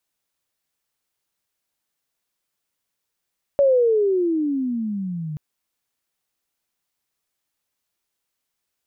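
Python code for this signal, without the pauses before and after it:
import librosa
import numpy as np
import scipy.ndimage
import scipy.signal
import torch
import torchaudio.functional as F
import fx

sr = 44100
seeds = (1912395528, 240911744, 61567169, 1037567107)

y = fx.riser_tone(sr, length_s=1.78, level_db=-12.0, wave='sine', hz=572.0, rise_st=-23.5, swell_db=-14.5)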